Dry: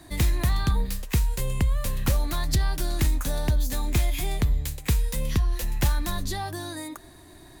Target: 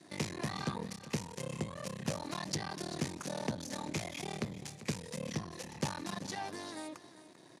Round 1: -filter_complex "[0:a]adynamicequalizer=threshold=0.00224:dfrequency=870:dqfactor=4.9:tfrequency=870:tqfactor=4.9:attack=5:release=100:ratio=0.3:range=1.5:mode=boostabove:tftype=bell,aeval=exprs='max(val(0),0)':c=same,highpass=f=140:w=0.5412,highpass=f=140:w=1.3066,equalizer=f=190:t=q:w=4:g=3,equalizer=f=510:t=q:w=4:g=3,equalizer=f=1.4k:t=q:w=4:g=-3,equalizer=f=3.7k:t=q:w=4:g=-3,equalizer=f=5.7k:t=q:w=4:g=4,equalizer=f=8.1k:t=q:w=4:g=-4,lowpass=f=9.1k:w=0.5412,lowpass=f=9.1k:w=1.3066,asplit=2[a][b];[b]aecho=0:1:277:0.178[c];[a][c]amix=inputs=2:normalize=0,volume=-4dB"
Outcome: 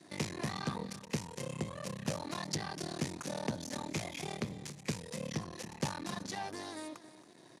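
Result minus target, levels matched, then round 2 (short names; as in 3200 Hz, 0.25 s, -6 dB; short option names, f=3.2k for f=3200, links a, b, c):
echo 0.116 s early
-filter_complex "[0:a]adynamicequalizer=threshold=0.00224:dfrequency=870:dqfactor=4.9:tfrequency=870:tqfactor=4.9:attack=5:release=100:ratio=0.3:range=1.5:mode=boostabove:tftype=bell,aeval=exprs='max(val(0),0)':c=same,highpass=f=140:w=0.5412,highpass=f=140:w=1.3066,equalizer=f=190:t=q:w=4:g=3,equalizer=f=510:t=q:w=4:g=3,equalizer=f=1.4k:t=q:w=4:g=-3,equalizer=f=3.7k:t=q:w=4:g=-3,equalizer=f=5.7k:t=q:w=4:g=4,equalizer=f=8.1k:t=q:w=4:g=-4,lowpass=f=9.1k:w=0.5412,lowpass=f=9.1k:w=1.3066,asplit=2[a][b];[b]aecho=0:1:393:0.178[c];[a][c]amix=inputs=2:normalize=0,volume=-4dB"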